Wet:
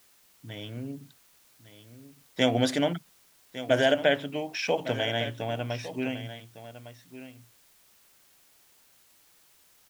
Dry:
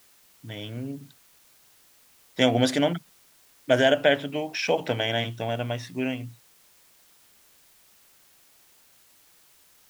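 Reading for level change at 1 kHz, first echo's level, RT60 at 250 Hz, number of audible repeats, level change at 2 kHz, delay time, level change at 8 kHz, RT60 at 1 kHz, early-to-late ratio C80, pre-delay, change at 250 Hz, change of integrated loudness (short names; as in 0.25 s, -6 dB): -3.0 dB, -13.5 dB, none, 1, -3.0 dB, 1.156 s, -3.0 dB, none, none, none, -3.0 dB, -3.0 dB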